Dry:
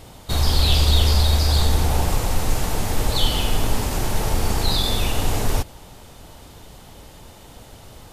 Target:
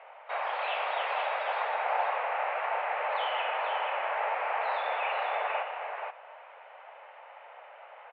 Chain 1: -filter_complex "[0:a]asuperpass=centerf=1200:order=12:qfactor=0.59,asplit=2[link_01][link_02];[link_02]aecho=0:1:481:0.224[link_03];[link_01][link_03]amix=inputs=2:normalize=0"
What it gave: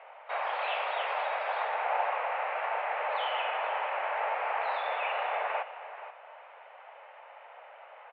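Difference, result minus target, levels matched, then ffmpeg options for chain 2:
echo-to-direct −7.5 dB
-filter_complex "[0:a]asuperpass=centerf=1200:order=12:qfactor=0.59,asplit=2[link_01][link_02];[link_02]aecho=0:1:481:0.531[link_03];[link_01][link_03]amix=inputs=2:normalize=0"

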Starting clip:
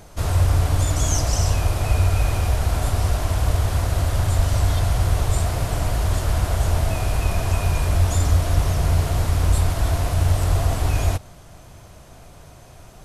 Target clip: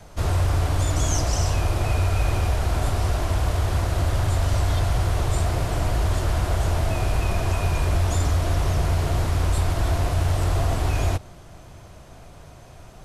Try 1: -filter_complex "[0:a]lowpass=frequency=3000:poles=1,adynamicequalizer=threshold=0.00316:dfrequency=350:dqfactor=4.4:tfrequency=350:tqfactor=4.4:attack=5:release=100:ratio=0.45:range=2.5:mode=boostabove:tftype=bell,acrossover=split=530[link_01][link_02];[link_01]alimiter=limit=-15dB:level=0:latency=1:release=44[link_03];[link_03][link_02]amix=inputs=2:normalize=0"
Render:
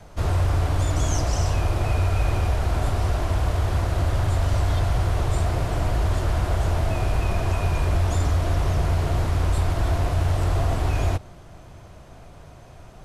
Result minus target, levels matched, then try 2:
8,000 Hz band −4.0 dB
-filter_complex "[0:a]lowpass=frequency=6000:poles=1,adynamicequalizer=threshold=0.00316:dfrequency=350:dqfactor=4.4:tfrequency=350:tqfactor=4.4:attack=5:release=100:ratio=0.45:range=2.5:mode=boostabove:tftype=bell,acrossover=split=530[link_01][link_02];[link_01]alimiter=limit=-15dB:level=0:latency=1:release=44[link_03];[link_03][link_02]amix=inputs=2:normalize=0"

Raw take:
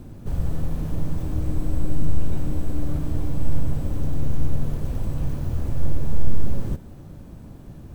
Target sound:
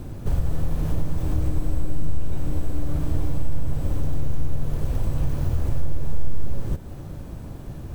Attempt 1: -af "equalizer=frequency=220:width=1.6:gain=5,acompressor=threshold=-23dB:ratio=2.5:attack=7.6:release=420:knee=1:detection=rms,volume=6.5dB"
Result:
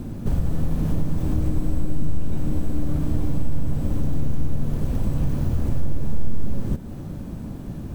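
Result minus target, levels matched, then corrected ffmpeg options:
250 Hz band +4.0 dB
-af "equalizer=frequency=220:width=1.6:gain=-5,acompressor=threshold=-23dB:ratio=2.5:attack=7.6:release=420:knee=1:detection=rms,volume=6.5dB"

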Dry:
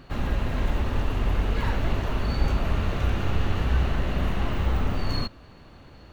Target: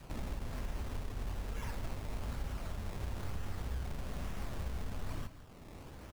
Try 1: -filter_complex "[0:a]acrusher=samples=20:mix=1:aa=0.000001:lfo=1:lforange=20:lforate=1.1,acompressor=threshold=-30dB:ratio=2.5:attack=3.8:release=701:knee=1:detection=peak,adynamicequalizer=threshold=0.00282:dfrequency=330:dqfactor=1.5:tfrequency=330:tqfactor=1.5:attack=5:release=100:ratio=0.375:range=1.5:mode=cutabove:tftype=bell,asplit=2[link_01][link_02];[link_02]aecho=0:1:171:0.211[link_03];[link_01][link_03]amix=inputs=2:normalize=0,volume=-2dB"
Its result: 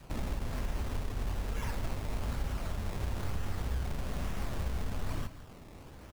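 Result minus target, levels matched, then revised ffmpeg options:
downward compressor: peak gain reduction −5 dB
-filter_complex "[0:a]acrusher=samples=20:mix=1:aa=0.000001:lfo=1:lforange=20:lforate=1.1,acompressor=threshold=-38dB:ratio=2.5:attack=3.8:release=701:knee=1:detection=peak,adynamicequalizer=threshold=0.00282:dfrequency=330:dqfactor=1.5:tfrequency=330:tqfactor=1.5:attack=5:release=100:ratio=0.375:range=1.5:mode=cutabove:tftype=bell,asplit=2[link_01][link_02];[link_02]aecho=0:1:171:0.211[link_03];[link_01][link_03]amix=inputs=2:normalize=0,volume=-2dB"

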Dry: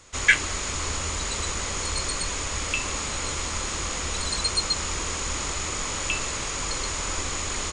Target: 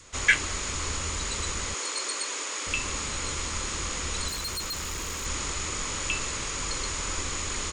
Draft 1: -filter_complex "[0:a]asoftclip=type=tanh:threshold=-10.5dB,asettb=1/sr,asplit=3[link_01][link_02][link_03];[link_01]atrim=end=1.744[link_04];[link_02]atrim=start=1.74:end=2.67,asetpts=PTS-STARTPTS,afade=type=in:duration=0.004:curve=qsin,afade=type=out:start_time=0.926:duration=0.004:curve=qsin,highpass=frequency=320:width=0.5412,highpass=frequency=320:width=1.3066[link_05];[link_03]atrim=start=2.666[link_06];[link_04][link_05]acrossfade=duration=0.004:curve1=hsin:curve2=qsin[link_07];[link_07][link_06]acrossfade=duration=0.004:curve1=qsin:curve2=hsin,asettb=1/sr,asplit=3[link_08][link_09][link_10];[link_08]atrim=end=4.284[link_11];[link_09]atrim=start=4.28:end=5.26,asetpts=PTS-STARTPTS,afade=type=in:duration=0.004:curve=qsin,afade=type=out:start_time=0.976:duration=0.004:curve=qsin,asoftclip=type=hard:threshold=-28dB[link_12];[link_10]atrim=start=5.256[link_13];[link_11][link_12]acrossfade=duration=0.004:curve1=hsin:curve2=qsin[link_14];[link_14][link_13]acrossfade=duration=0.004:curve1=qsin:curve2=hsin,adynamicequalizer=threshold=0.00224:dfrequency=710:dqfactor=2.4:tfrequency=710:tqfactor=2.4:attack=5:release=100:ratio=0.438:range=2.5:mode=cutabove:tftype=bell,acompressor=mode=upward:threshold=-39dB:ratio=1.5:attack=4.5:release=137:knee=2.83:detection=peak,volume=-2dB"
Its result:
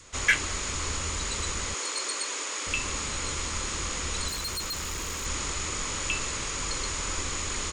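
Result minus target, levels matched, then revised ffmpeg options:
soft clipping: distortion +9 dB
-filter_complex "[0:a]asoftclip=type=tanh:threshold=-4dB,asettb=1/sr,asplit=3[link_01][link_02][link_03];[link_01]atrim=end=1.744[link_04];[link_02]atrim=start=1.74:end=2.67,asetpts=PTS-STARTPTS,afade=type=in:duration=0.004:curve=qsin,afade=type=out:start_time=0.926:duration=0.004:curve=qsin,highpass=frequency=320:width=0.5412,highpass=frequency=320:width=1.3066[link_05];[link_03]atrim=start=2.666[link_06];[link_04][link_05]acrossfade=duration=0.004:curve1=hsin:curve2=qsin[link_07];[link_07][link_06]acrossfade=duration=0.004:curve1=qsin:curve2=hsin,asettb=1/sr,asplit=3[link_08][link_09][link_10];[link_08]atrim=end=4.284[link_11];[link_09]atrim=start=4.28:end=5.26,asetpts=PTS-STARTPTS,afade=type=in:duration=0.004:curve=qsin,afade=type=out:start_time=0.976:duration=0.004:curve=qsin,asoftclip=type=hard:threshold=-28dB[link_12];[link_10]atrim=start=5.256[link_13];[link_11][link_12]acrossfade=duration=0.004:curve1=hsin:curve2=qsin[link_14];[link_14][link_13]acrossfade=duration=0.004:curve1=qsin:curve2=hsin,adynamicequalizer=threshold=0.00224:dfrequency=710:dqfactor=2.4:tfrequency=710:tqfactor=2.4:attack=5:release=100:ratio=0.438:range=2.5:mode=cutabove:tftype=bell,acompressor=mode=upward:threshold=-39dB:ratio=1.5:attack=4.5:release=137:knee=2.83:detection=peak,volume=-2dB"

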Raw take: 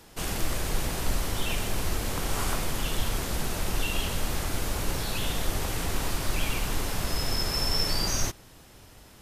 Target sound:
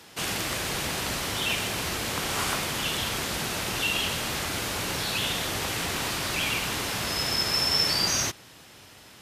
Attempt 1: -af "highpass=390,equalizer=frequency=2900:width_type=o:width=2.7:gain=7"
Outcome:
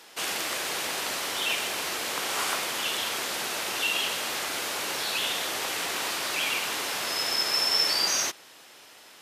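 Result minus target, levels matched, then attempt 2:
125 Hz band −17.0 dB
-af "highpass=100,equalizer=frequency=2900:width_type=o:width=2.7:gain=7"

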